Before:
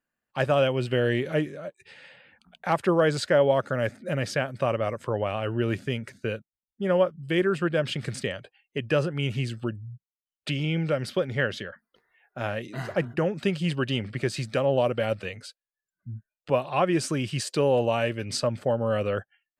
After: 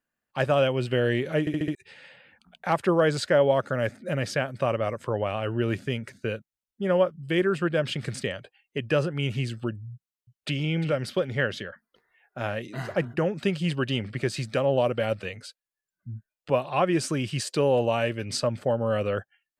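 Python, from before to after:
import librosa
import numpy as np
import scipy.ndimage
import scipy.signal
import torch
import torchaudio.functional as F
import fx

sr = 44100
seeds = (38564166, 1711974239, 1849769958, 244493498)

y = fx.echo_throw(x, sr, start_s=9.92, length_s=0.68, ms=350, feedback_pct=25, wet_db=-13.0)
y = fx.edit(y, sr, fx.stutter_over(start_s=1.4, slice_s=0.07, count=5), tone=tone)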